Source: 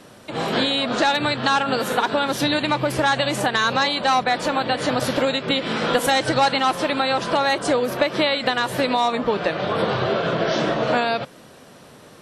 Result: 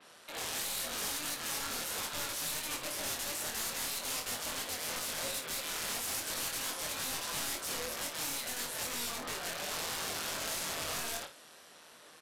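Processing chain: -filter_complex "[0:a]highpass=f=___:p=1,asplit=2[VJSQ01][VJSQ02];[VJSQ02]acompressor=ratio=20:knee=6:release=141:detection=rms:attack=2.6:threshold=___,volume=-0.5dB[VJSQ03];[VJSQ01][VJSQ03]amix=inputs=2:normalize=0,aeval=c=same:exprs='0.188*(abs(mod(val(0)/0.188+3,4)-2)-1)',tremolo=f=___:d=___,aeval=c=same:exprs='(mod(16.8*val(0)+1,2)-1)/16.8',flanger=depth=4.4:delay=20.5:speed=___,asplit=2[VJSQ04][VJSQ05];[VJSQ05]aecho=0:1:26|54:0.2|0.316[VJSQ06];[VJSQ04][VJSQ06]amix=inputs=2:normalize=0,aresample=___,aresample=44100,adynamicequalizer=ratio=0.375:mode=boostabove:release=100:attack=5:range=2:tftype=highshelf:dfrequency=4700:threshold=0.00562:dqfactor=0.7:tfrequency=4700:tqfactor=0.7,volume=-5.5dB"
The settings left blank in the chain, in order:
1400, -32dB, 160, 0.571, 3, 32000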